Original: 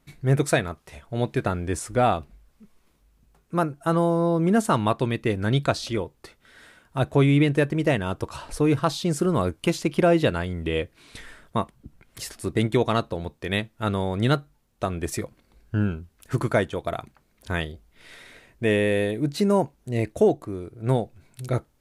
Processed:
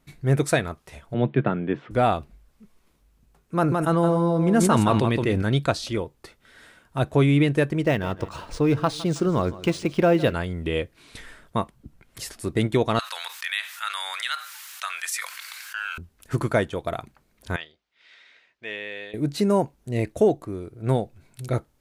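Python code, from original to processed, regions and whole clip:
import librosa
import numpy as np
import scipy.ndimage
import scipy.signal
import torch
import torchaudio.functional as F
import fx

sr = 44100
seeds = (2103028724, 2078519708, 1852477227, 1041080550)

y = fx.chain(x, sr, fx.cheby1_bandpass(low_hz=130.0, high_hz=3300.0, order=4),
    fx.low_shelf(hz=310.0, db=7.5), at=(1.14, 1.91))
y = fx.chain(y, sr, fx.high_shelf(hz=10000.0, db=-5.0),
    fx.echo_single(ms=167, db=-8.0),
    fx.sustainer(db_per_s=22.0), at=(3.55, 5.42))
y = fx.chain(y, sr, fx.echo_feedback(ms=160, feedback_pct=43, wet_db=-17.5),
    fx.resample_linear(factor=3), at=(7.82, 10.33))
y = fx.chain(y, sr, fx.cheby2_highpass(hz=230.0, order=4, stop_db=80),
    fx.env_flatten(amount_pct=70), at=(12.99, 15.98))
y = fx.chain(y, sr, fx.bandpass_q(hz=4500.0, q=0.63),
    fx.air_absorb(metres=160.0), at=(17.56, 19.14))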